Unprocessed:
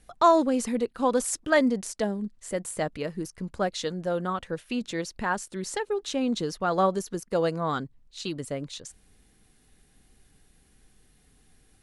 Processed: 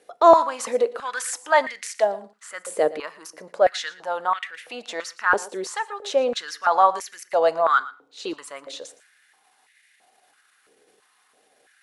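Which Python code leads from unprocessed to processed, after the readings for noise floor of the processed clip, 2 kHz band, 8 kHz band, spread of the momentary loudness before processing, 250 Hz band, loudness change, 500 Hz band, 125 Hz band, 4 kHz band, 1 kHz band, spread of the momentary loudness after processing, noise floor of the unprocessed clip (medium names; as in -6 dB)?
-63 dBFS, +7.0 dB, +1.5 dB, 12 LU, -8.5 dB, +5.5 dB, +5.5 dB, under -15 dB, +3.5 dB, +7.5 dB, 18 LU, -62 dBFS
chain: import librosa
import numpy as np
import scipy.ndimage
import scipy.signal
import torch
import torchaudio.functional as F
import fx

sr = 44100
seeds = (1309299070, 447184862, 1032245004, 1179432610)

p1 = fx.transient(x, sr, attack_db=-4, sustain_db=3)
p2 = fx.high_shelf(p1, sr, hz=6200.0, db=-7.0)
p3 = p2 + fx.echo_single(p2, sr, ms=116, db=-18.5, dry=0)
p4 = fx.rev_fdn(p3, sr, rt60_s=0.57, lf_ratio=1.1, hf_ratio=0.9, size_ms=20.0, drr_db=17.0)
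p5 = fx.filter_held_highpass(p4, sr, hz=3.0, low_hz=460.0, high_hz=2000.0)
y = F.gain(torch.from_numpy(p5), 4.0).numpy()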